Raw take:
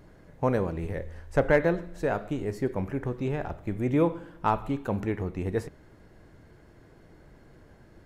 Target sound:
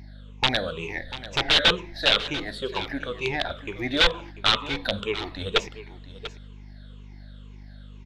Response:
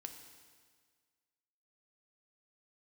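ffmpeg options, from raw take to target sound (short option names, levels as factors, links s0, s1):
-af "afftfilt=real='re*pow(10,21/40*sin(2*PI*(0.74*log(max(b,1)*sr/1024/100)/log(2)-(-2.1)*(pts-256)/sr)))':imag='im*pow(10,21/40*sin(2*PI*(0.74*log(max(b,1)*sr/1024/100)/log(2)-(-2.1)*(pts-256)/sr)))':win_size=1024:overlap=0.75,aemphasis=mode=production:type=riaa,asoftclip=type=tanh:threshold=0.376,agate=range=0.447:threshold=0.00708:ratio=16:detection=peak,aeval=exprs='(mod(6.68*val(0)+1,2)-1)/6.68':c=same,asubboost=boost=4.5:cutoff=69,aecho=1:1:692:0.188,aeval=exprs='val(0)+0.00794*(sin(2*PI*50*n/s)+sin(2*PI*2*50*n/s)/2+sin(2*PI*3*50*n/s)/3+sin(2*PI*4*50*n/s)/4+sin(2*PI*5*50*n/s)/5)':c=same,lowpass=f=3600:t=q:w=5.2"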